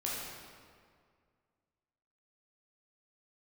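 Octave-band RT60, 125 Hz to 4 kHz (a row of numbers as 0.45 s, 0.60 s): 2.3 s, 2.2 s, 2.1 s, 2.0 s, 1.7 s, 1.4 s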